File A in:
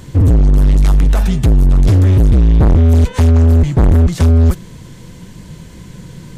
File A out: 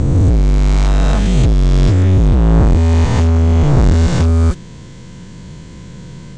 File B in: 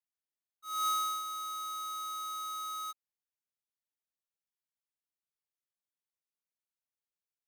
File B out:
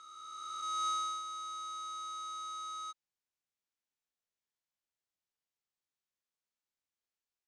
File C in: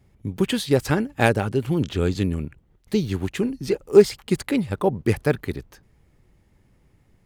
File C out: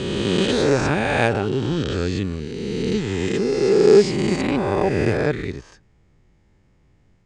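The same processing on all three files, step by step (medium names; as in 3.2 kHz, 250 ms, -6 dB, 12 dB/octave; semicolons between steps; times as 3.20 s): reverse spectral sustain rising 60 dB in 2.58 s; steep low-pass 8 kHz 36 dB/octave; trim -3 dB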